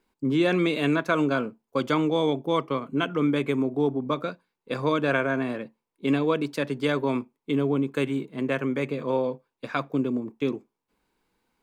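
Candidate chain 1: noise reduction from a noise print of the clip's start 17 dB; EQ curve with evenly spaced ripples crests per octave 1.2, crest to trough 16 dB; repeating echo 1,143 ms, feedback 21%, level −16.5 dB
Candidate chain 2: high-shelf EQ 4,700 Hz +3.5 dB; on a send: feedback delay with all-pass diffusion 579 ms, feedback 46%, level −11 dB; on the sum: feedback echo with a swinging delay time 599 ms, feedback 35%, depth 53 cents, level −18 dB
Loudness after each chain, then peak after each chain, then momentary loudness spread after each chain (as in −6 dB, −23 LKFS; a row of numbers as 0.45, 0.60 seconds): −27.0, −26.0 LKFS; −9.0, −9.0 dBFS; 14, 9 LU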